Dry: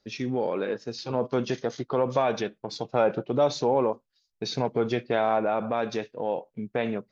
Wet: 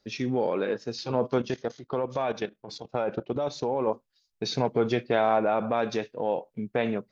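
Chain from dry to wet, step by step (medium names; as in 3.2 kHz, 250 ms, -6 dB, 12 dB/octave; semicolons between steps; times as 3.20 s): 1.38–3.87 s: level held to a coarse grid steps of 14 dB; trim +1 dB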